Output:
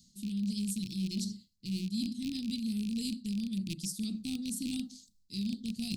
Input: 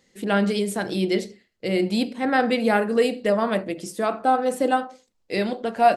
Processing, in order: rattling part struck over -32 dBFS, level -15 dBFS; elliptic band-stop 210–4200 Hz, stop band 50 dB; reverse; compressor 5:1, threshold -42 dBFS, peak gain reduction 19 dB; reverse; gain +8 dB

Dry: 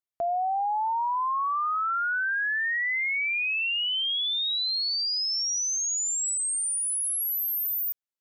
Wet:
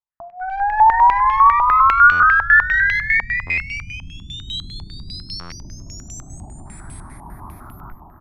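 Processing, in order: notch 710 Hz, Q 12; non-linear reverb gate 0.29 s falling, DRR 10 dB; 6.65–7.17 added noise violet -44 dBFS; AGC gain up to 13 dB; one-sided clip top -20 dBFS, bottom -9.5 dBFS; low shelf 100 Hz +8 dB; fixed phaser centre 1200 Hz, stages 4; echo 0.517 s -5.5 dB; stuck buffer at 2.11/3.46/5.4, samples 512, times 9; stepped low-pass 10 Hz 900–2900 Hz; gain -3 dB

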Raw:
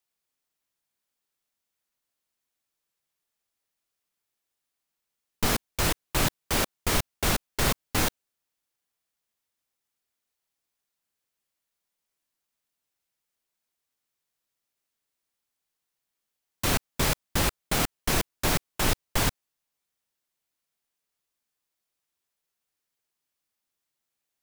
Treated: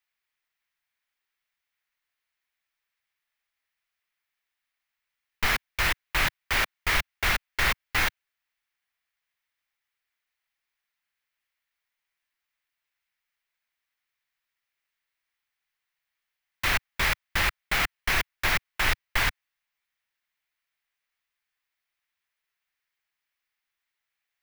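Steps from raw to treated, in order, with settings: ten-band EQ 125 Hz -7 dB, 250 Hz -10 dB, 500 Hz -6 dB, 2000 Hz +10 dB, 8000 Hz -7 dB, 16000 Hz -4 dB

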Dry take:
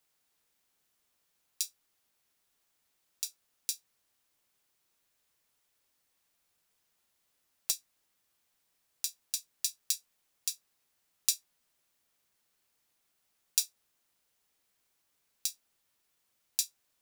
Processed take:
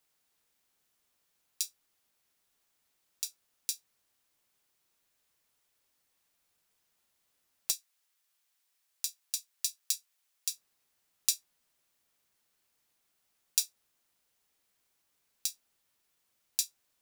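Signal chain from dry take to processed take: 7.76–10.52 HPF 1300 Hz 6 dB/oct

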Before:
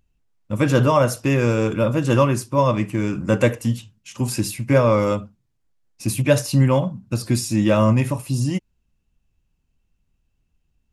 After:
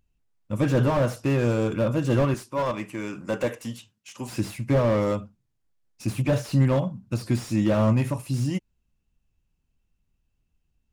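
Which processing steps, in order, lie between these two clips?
2.34–4.33 HPF 460 Hz 6 dB/oct; slew limiter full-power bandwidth 98 Hz; gain -4 dB

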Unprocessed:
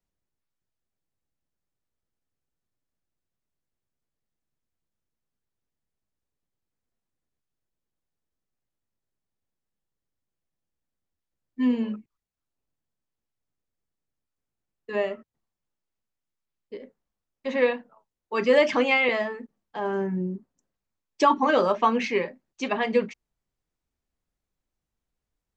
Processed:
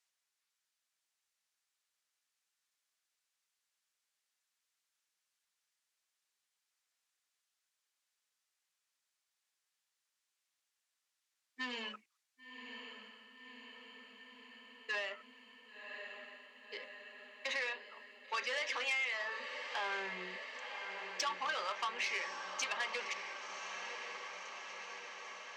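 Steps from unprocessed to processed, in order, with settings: HPF 1400 Hz 12 dB/oct; high shelf 5200 Hz +9.5 dB; compressor 6:1, threshold -41 dBFS, peak gain reduction 20.5 dB; air absorption 54 m; diffused feedback echo 1.071 s, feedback 71%, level -8.5 dB; core saturation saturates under 3700 Hz; gain +7.5 dB

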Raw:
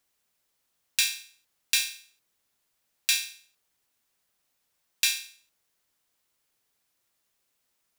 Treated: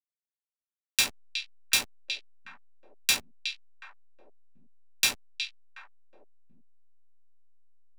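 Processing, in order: per-bin expansion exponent 1.5; backlash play -24 dBFS; delay with a stepping band-pass 0.366 s, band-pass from 3300 Hz, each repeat -1.4 oct, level -6.5 dB; gain +2.5 dB

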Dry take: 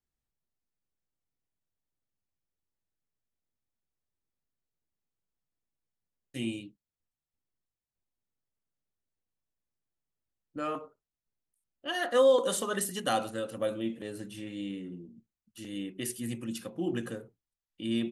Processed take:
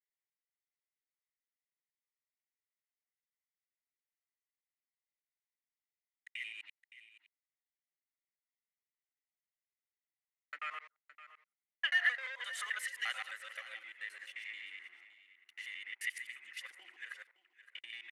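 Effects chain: local time reversal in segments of 87 ms; sample leveller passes 2; tilt -4.5 dB/oct; compressor, threshold -20 dBFS, peak gain reduction 9 dB; ladder high-pass 1900 Hz, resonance 80%; echo 0.566 s -15 dB; gain +8.5 dB

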